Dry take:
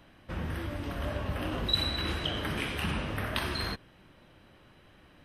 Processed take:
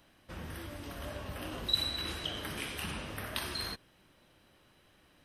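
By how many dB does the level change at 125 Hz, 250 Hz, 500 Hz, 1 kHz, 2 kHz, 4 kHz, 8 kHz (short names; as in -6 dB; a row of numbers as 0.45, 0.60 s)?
-9.5, -8.0, -6.5, -6.5, -6.0, -2.0, +3.0 dB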